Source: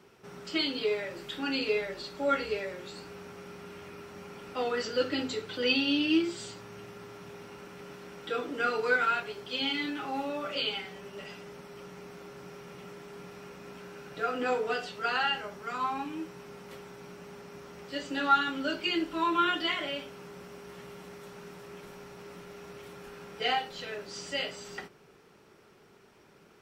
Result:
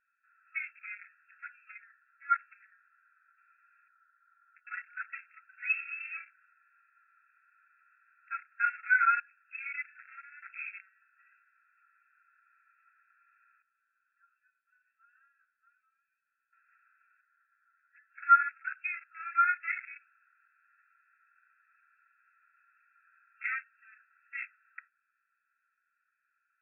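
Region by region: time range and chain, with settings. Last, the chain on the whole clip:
1.46–3.38 s: low-pass 2.1 kHz 24 dB/octave + bass shelf 370 Hz -10.5 dB
3.88–4.67 s: low-pass 1.6 kHz 24 dB/octave + compression 10:1, threshold -36 dBFS
13.62–16.53 s: sorted samples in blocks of 8 samples + compression, threshold -37 dBFS + four-pole ladder low-pass 6.5 kHz, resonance 75%
17.21–18.23 s: low-pass 2 kHz 24 dB/octave + three-phase chorus
whole clip: local Wiener filter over 41 samples; FFT band-pass 1.3–2.7 kHz; tilt EQ -2.5 dB/octave; trim +5 dB

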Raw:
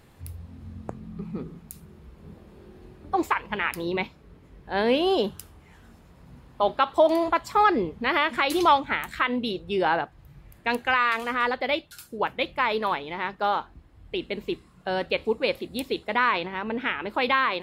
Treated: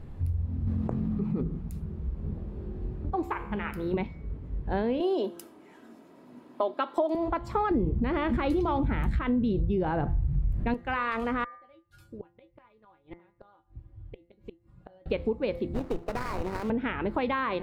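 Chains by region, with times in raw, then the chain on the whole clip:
0.67–1.41 s: high-pass 230 Hz 6 dB/octave + level flattener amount 70%
3.10–3.94 s: peaking EQ 13 kHz +8 dB 0.51 oct + feedback comb 69 Hz, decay 0.97 s
5.00–7.15 s: high-pass 250 Hz 24 dB/octave + treble shelf 5.6 kHz +10 dB + comb 3.1 ms, depth 38%
7.71–10.74 s: bass shelf 300 Hz +12 dB + level flattener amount 50%
11.44–15.06 s: feedback comb 110 Hz, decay 0.16 s, harmonics odd, mix 90% + inverted gate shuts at -32 dBFS, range -27 dB
15.74–16.70 s: high-pass 300 Hz + sample-rate reducer 3.3 kHz, jitter 20% + compression 10:1, threshold -28 dBFS
whole clip: tilt EQ -4 dB/octave; de-hum 171.9 Hz, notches 13; compression 6:1, threshold -25 dBFS

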